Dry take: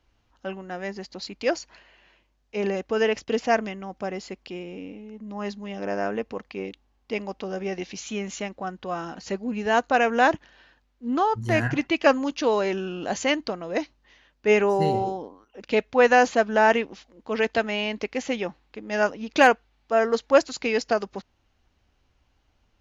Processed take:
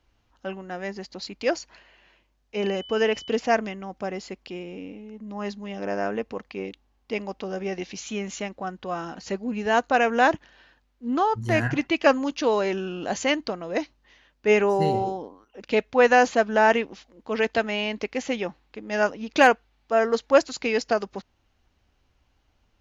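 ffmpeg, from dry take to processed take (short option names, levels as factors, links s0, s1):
-filter_complex "[0:a]asettb=1/sr,asplit=3[s0][s1][s2];[s0]atrim=end=2.564[s3];[s1]atrim=start=2.56:end=3.3,asetpts=PTS-STARTPTS,afade=t=in:d=0.004:c=qsin,afade=t=out:st=0.736:d=0.004:c=qsin,aeval=exprs='val(0)+0.01*sin(2*PI*3000*n/s)':c=same[s4];[s2]atrim=start=3.296[s5];[s3][s4]acrossfade=d=0.004:c1=hsin:c2=qsin[s6];[s6][s5]acrossfade=d=0.004:c1=qsin:c2=hsin"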